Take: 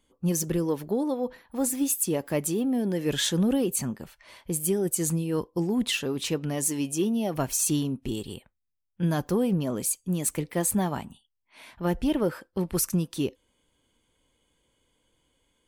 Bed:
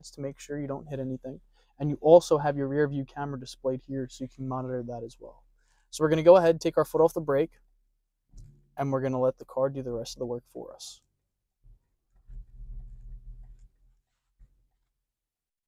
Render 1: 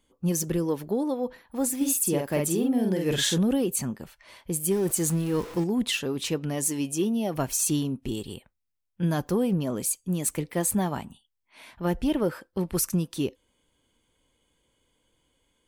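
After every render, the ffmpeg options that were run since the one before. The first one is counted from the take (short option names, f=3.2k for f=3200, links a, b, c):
-filter_complex "[0:a]asettb=1/sr,asplit=3[a][b][c];[a]atrim=end=1.764[d];[b]atrim=start=1.76:end=3.38,asetpts=PTS-STARTPTS,afade=t=in:d=0.004:c=qsin,afade=t=out:st=1.616:d=0.004:c=qsin,asplit=2[e][f];[f]adelay=48,volume=-3dB[g];[e][g]amix=inputs=2:normalize=0,atrim=end_sample=71442[h];[c]atrim=start=3.376[i];[d][h]acrossfade=d=0.004:c1=hsin:c2=qsin[j];[j][i]acrossfade=d=0.004:c1=qsin:c2=hsin,asettb=1/sr,asplit=3[k][l][m];[k]atrim=end=4.714[n];[l]atrim=start=4.71:end=5.64,asetpts=PTS-STARTPTS,afade=t=in:d=0.004:c=qsin,afade=t=out:st=0.926:d=0.004:c=qsin,aeval=exprs='val(0)+0.5*0.0178*sgn(val(0))':c=same[o];[m]atrim=start=5.636[p];[n][o]acrossfade=d=0.004:c1=hsin:c2=qsin[q];[q][p]acrossfade=d=0.004:c1=qsin:c2=hsin"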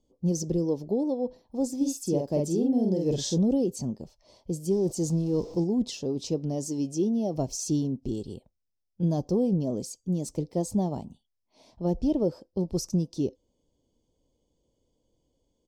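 -af "firequalizer=gain_entry='entry(640,0);entry(1500,-27);entry(5200,1);entry(10000,-21)':delay=0.05:min_phase=1"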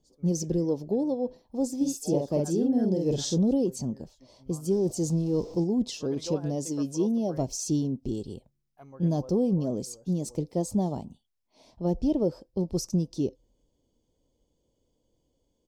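-filter_complex "[1:a]volume=-20.5dB[a];[0:a][a]amix=inputs=2:normalize=0"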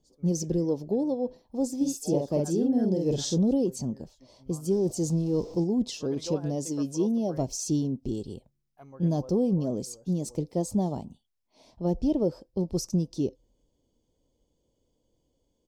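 -af anull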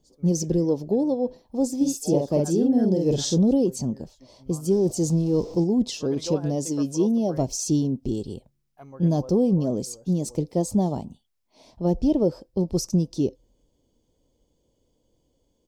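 -af "volume=4.5dB"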